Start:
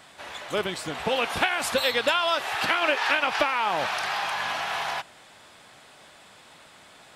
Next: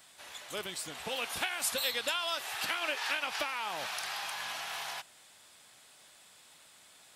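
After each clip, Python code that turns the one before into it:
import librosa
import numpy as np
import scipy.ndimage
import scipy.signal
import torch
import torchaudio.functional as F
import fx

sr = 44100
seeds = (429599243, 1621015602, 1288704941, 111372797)

y = scipy.signal.lfilter([1.0, -0.8], [1.0], x)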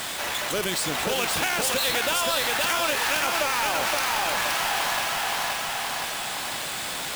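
y = fx.halfwave_hold(x, sr)
y = fx.echo_feedback(y, sr, ms=521, feedback_pct=38, wet_db=-3.5)
y = fx.env_flatten(y, sr, amount_pct=70)
y = F.gain(torch.from_numpy(y), 1.5).numpy()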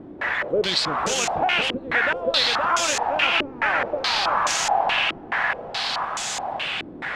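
y = fx.filter_held_lowpass(x, sr, hz=4.7, low_hz=320.0, high_hz=6700.0)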